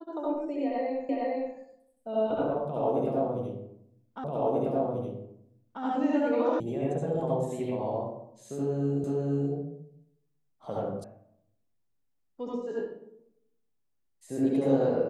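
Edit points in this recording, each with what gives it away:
1.09 repeat of the last 0.46 s
4.24 repeat of the last 1.59 s
6.6 sound cut off
9.04 repeat of the last 0.48 s
11.04 sound cut off

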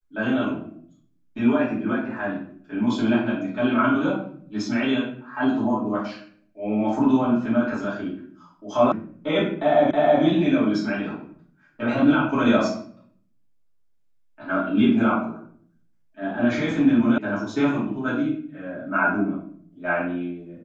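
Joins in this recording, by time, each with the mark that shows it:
8.92 sound cut off
9.91 repeat of the last 0.32 s
17.18 sound cut off

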